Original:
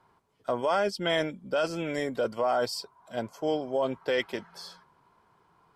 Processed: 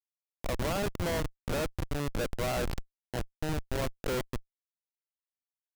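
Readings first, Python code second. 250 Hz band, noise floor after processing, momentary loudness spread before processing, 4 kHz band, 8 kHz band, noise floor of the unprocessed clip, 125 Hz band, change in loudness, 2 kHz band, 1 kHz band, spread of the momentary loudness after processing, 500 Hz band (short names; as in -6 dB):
-2.5 dB, under -85 dBFS, 11 LU, -5.5 dB, +3.5 dB, -66 dBFS, +7.0 dB, -4.5 dB, -4.5 dB, -7.0 dB, 8 LU, -7.0 dB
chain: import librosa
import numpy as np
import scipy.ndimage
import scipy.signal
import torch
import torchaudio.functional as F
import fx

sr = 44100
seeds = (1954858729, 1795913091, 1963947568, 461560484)

y = fx.spec_swells(x, sr, rise_s=0.45)
y = fx.schmitt(y, sr, flips_db=-24.5)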